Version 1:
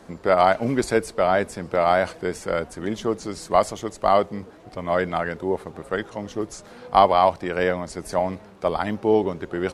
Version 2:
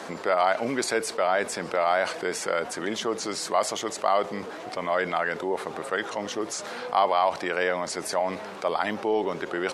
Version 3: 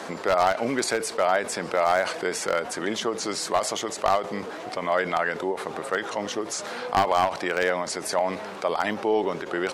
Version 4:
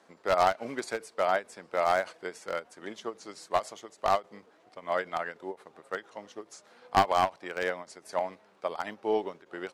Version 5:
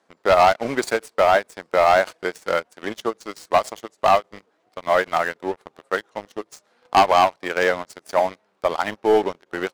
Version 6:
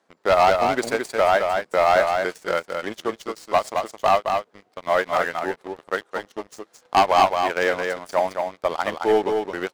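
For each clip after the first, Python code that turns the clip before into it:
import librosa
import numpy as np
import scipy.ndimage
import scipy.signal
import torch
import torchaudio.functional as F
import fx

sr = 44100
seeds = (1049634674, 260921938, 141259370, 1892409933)

y1 = fx.weighting(x, sr, curve='A')
y1 = fx.env_flatten(y1, sr, amount_pct=50)
y1 = F.gain(torch.from_numpy(y1), -6.5).numpy()
y2 = np.minimum(y1, 2.0 * 10.0 ** (-15.5 / 20.0) - y1)
y2 = fx.end_taper(y2, sr, db_per_s=160.0)
y2 = F.gain(torch.from_numpy(y2), 2.0).numpy()
y3 = fx.upward_expand(y2, sr, threshold_db=-35.0, expansion=2.5)
y4 = fx.leveller(y3, sr, passes=3)
y4 = F.gain(torch.from_numpy(y4), 1.0).numpy()
y5 = y4 + 10.0 ** (-5.0 / 20.0) * np.pad(y4, (int(218 * sr / 1000.0), 0))[:len(y4)]
y5 = F.gain(torch.from_numpy(y5), -2.0).numpy()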